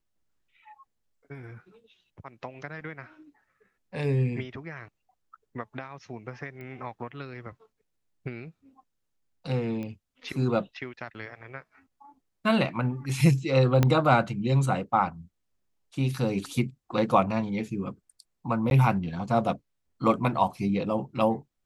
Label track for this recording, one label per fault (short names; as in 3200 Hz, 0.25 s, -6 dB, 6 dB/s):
6.610000	6.610000	pop -31 dBFS
9.830000	9.830000	pop -25 dBFS
13.830000	13.830000	pop -9 dBFS
18.700000	18.710000	gap 11 ms